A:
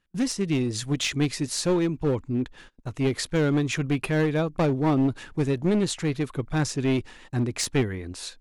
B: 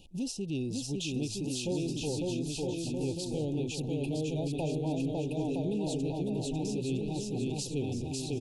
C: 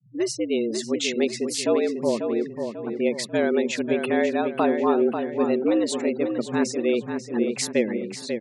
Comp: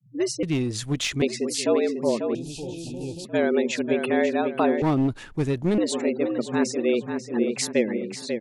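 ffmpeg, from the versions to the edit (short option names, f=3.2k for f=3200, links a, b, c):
-filter_complex "[0:a]asplit=2[a][b];[2:a]asplit=4[c][d][e][f];[c]atrim=end=0.432[g];[a]atrim=start=0.428:end=1.222[h];[d]atrim=start=1.218:end=2.352[i];[1:a]atrim=start=2.348:end=3.252[j];[e]atrim=start=3.248:end=4.822[k];[b]atrim=start=4.818:end=5.782[l];[f]atrim=start=5.778[m];[g][h]acrossfade=d=0.004:c1=hsin:c2=hsin[n];[n][i]acrossfade=d=0.004:c1=hsin:c2=hsin[o];[o][j]acrossfade=d=0.004:c1=hsin:c2=hsin[p];[p][k]acrossfade=d=0.004:c1=hsin:c2=hsin[q];[q][l]acrossfade=d=0.004:c1=hsin:c2=hsin[r];[r][m]acrossfade=d=0.004:c1=hsin:c2=hsin"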